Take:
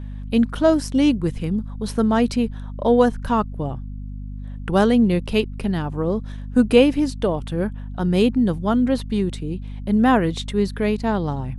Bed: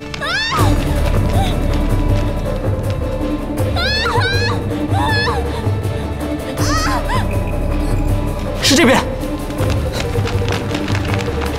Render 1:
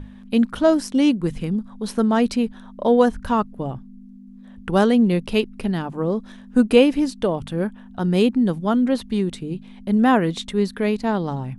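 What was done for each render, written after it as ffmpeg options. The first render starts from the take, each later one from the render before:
-af "bandreject=f=50:t=h:w=6,bandreject=f=100:t=h:w=6,bandreject=f=150:t=h:w=6"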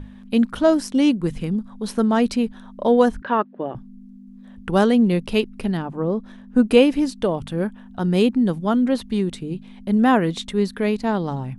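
-filter_complex "[0:a]asettb=1/sr,asplit=3[a][b][c];[a]atrim=end=3.224[d];[b]atrim=start=3.22:end=3.75,asetpts=PTS-STARTPTS,afade=t=in:d=0.004:c=qsin,afade=t=out:st=0.526:d=0.004:c=qsin,highpass=280,equalizer=f=360:t=q:w=4:g=6,equalizer=f=580:t=q:w=4:g=4,equalizer=f=1.7k:t=q:w=4:g=8,lowpass=f=3.4k:w=0.5412,lowpass=f=3.4k:w=1.3066[e];[c]atrim=start=3.746[f];[d][e]acrossfade=d=0.004:c1=hsin:c2=qsin[g];[g][f]acrossfade=d=0.004:c1=qsin:c2=hsin,asettb=1/sr,asplit=3[h][i][j];[h]atrim=end=5.774[k];[i]atrim=start=5.77:end=6.64,asetpts=PTS-STARTPTS,afade=t=in:d=0.004:c=qsin,afade=t=out:st=0.866:d=0.004:c=qsin,highshelf=f=2.9k:g=-9[l];[j]atrim=start=6.636[m];[k][l]acrossfade=d=0.004:c1=hsin:c2=qsin[n];[n][m]acrossfade=d=0.004:c1=qsin:c2=hsin"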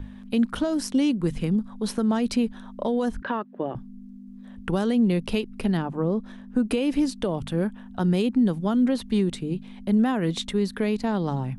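-filter_complex "[0:a]alimiter=limit=-13.5dB:level=0:latency=1:release=129,acrossover=split=290|3000[a][b][c];[b]acompressor=threshold=-25dB:ratio=6[d];[a][d][c]amix=inputs=3:normalize=0"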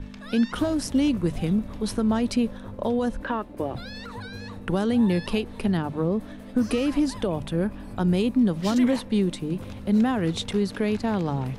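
-filter_complex "[1:a]volume=-23.5dB[a];[0:a][a]amix=inputs=2:normalize=0"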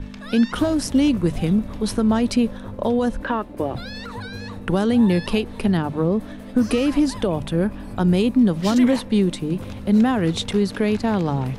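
-af "volume=4.5dB"

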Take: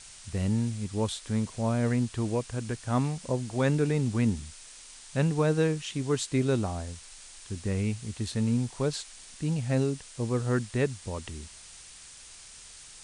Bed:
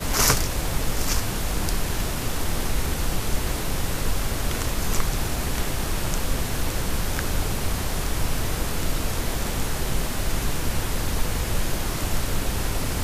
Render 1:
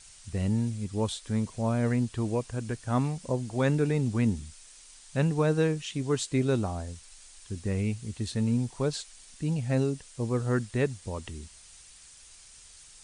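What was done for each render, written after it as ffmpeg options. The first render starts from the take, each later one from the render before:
-af "afftdn=nr=6:nf=-49"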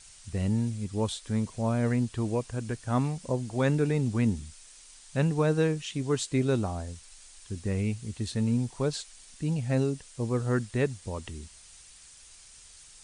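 -af anull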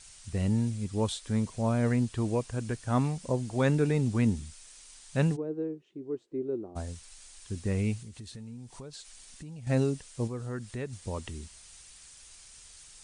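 -filter_complex "[0:a]asplit=3[a][b][c];[a]afade=t=out:st=5.35:d=0.02[d];[b]bandpass=f=360:t=q:w=4.5,afade=t=in:st=5.35:d=0.02,afade=t=out:st=6.75:d=0.02[e];[c]afade=t=in:st=6.75:d=0.02[f];[d][e][f]amix=inputs=3:normalize=0,asettb=1/sr,asplit=3[g][h][i];[g]atrim=end=8.024[j];[h]atrim=start=8.02:end=9.67,asetpts=PTS-STARTPTS,afade=t=in:d=0.004:c=qsin,afade=t=out:st=1.646:d=0.004:c=qsin,acompressor=threshold=-42dB:ratio=5:attack=3.2:release=140:knee=1:detection=peak[k];[i]atrim=start=9.666[l];[j][k]acrossfade=d=0.004:c1=hsin:c2=qsin[m];[m][l]acrossfade=d=0.004:c1=qsin:c2=hsin,asettb=1/sr,asplit=3[n][o][p];[n]atrim=end=10.274[q];[o]atrim=start=10.27:end=10.93,asetpts=PTS-STARTPTS,afade=t=in:d=0.004:c=qsin,afade=t=out:st=0.656:d=0.004:c=qsin,acompressor=threshold=-39dB:ratio=2:attack=3.2:release=140:knee=1:detection=peak[r];[p]atrim=start=10.926[s];[q][r]acrossfade=d=0.004:c1=hsin:c2=qsin[t];[t][s]acrossfade=d=0.004:c1=qsin:c2=hsin"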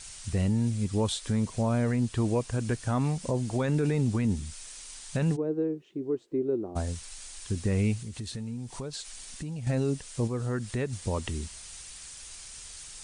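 -filter_complex "[0:a]asplit=2[a][b];[b]acompressor=threshold=-35dB:ratio=6,volume=2.5dB[c];[a][c]amix=inputs=2:normalize=0,alimiter=limit=-18dB:level=0:latency=1:release=15"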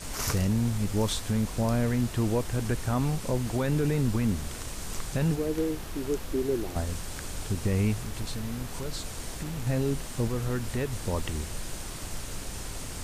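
-filter_complex "[1:a]volume=-12.5dB[a];[0:a][a]amix=inputs=2:normalize=0"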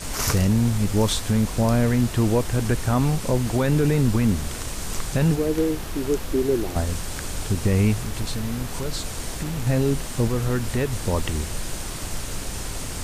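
-af "volume=6.5dB"

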